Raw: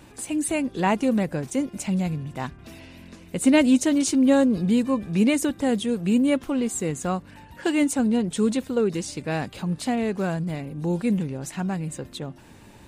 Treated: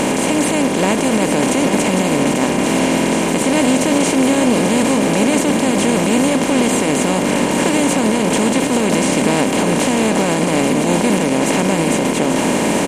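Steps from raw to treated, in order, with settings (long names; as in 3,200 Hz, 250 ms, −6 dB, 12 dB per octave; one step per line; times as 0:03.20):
compressor on every frequency bin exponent 0.2
brickwall limiter −5.5 dBFS, peak gain reduction 6.5 dB
single-tap delay 840 ms −8 dB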